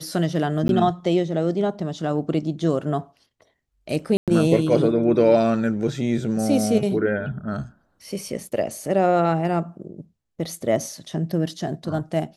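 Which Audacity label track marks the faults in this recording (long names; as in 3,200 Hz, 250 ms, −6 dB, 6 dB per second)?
0.680000	0.690000	drop-out
4.170000	4.280000	drop-out 107 ms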